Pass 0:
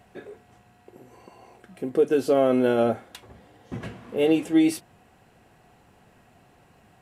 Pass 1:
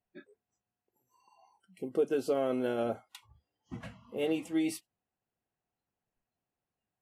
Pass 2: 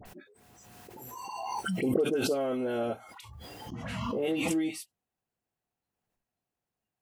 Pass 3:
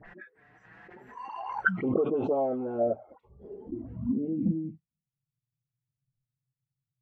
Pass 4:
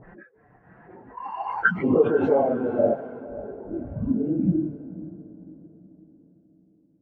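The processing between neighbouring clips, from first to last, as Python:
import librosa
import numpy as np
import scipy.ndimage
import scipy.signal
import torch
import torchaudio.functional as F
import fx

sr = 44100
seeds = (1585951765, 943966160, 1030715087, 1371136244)

y1 = fx.noise_reduce_blind(x, sr, reduce_db=25)
y1 = fx.hpss(y1, sr, part='harmonic', gain_db=-5)
y1 = y1 * 10.0 ** (-6.5 / 20.0)
y2 = fx.dispersion(y1, sr, late='highs', ms=56.0, hz=1600.0)
y2 = fx.pre_swell(y2, sr, db_per_s=23.0)
y3 = fx.env_flanger(y2, sr, rest_ms=7.4, full_db=-25.0)
y3 = fx.filter_sweep_lowpass(y3, sr, from_hz=1800.0, to_hz=130.0, start_s=1.37, end_s=5.17, q=6.4)
y4 = fx.phase_scramble(y3, sr, seeds[0], window_ms=50)
y4 = fx.echo_diffused(y4, sr, ms=530, feedback_pct=43, wet_db=-15)
y4 = fx.env_lowpass(y4, sr, base_hz=810.0, full_db=-25.5)
y4 = y4 * 10.0 ** (6.0 / 20.0)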